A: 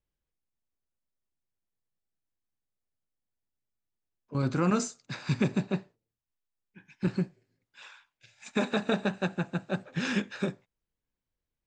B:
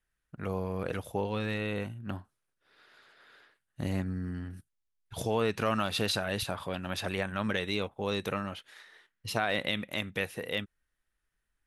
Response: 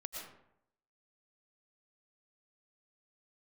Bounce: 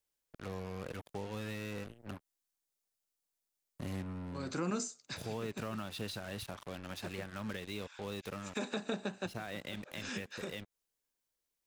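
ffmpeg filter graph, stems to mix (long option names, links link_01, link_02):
-filter_complex "[0:a]bass=frequency=250:gain=-14,treble=frequency=4000:gain=9,volume=0dB[link_01];[1:a]acrusher=bits=5:mix=0:aa=0.5,volume=-8dB,asplit=2[link_02][link_03];[link_03]apad=whole_len=514498[link_04];[link_01][link_04]sidechaincompress=threshold=-48dB:ratio=8:attack=16:release=164[link_05];[link_05][link_02]amix=inputs=2:normalize=0,acrossover=split=330[link_06][link_07];[link_07]acompressor=threshold=-42dB:ratio=3[link_08];[link_06][link_08]amix=inputs=2:normalize=0"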